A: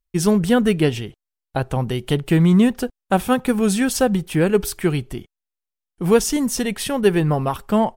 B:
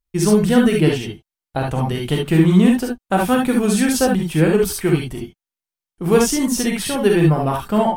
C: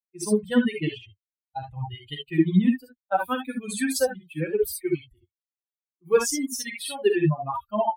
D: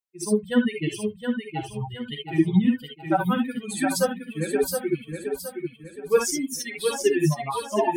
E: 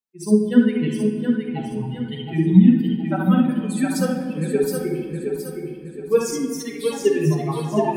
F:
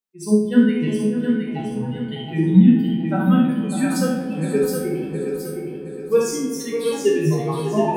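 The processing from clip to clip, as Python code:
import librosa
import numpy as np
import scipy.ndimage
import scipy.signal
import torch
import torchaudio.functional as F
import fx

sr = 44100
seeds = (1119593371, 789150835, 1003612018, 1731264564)

y1 = fx.rev_gated(x, sr, seeds[0], gate_ms=90, shape='rising', drr_db=-0.5)
y1 = F.gain(torch.from_numpy(y1), -1.0).numpy()
y2 = fx.bin_expand(y1, sr, power=3.0)
y2 = fx.highpass(y2, sr, hz=190.0, slope=6)
y3 = fx.echo_feedback(y2, sr, ms=718, feedback_pct=38, wet_db=-6.0)
y4 = fx.peak_eq(y3, sr, hz=210.0, db=8.5, octaves=2.0)
y4 = fx.room_shoebox(y4, sr, seeds[1], volume_m3=2900.0, walls='mixed', distance_m=1.5)
y4 = F.gain(torch.from_numpy(y4), -4.0).numpy()
y5 = fx.spec_trails(y4, sr, decay_s=0.47)
y5 = fx.echo_banded(y5, sr, ms=598, feedback_pct=49, hz=610.0, wet_db=-9)
y5 = F.gain(torch.from_numpy(y5), -1.0).numpy()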